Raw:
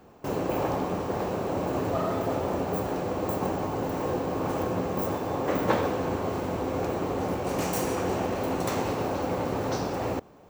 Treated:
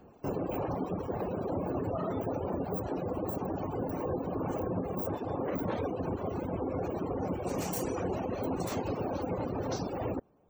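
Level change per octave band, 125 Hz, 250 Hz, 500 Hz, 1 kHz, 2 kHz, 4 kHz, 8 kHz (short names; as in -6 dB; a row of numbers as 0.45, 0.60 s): -3.5, -4.0, -5.5, -7.5, -11.0, -10.0, -6.5 dB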